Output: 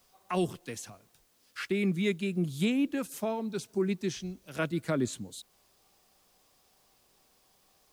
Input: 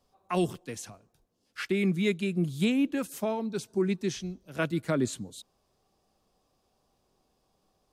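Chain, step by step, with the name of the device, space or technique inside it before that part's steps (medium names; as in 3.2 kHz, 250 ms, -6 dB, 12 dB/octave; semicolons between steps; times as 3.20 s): noise-reduction cassette on a plain deck (tape noise reduction on one side only encoder only; wow and flutter 22 cents; white noise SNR 36 dB); trim -2 dB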